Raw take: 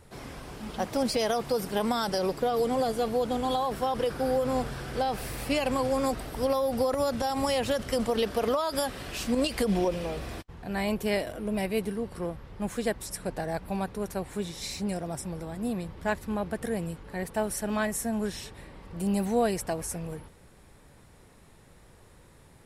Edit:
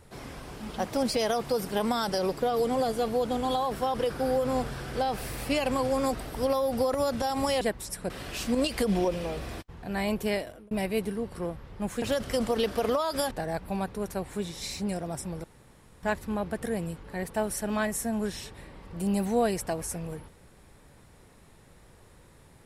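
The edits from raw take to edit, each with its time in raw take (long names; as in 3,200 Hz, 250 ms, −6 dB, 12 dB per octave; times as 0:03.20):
0:07.61–0:08.90: swap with 0:12.82–0:13.31
0:11.07–0:11.51: fade out
0:15.44–0:16.03: fill with room tone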